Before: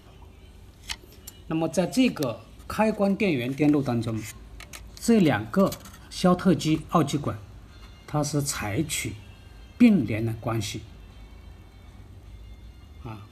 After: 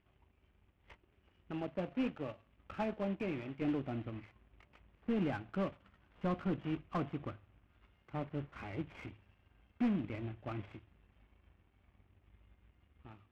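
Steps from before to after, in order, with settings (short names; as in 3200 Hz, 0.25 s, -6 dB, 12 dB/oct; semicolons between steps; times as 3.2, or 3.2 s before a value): CVSD 16 kbps; power-law curve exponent 1.4; soft clip -20.5 dBFS, distortion -10 dB; gain -7 dB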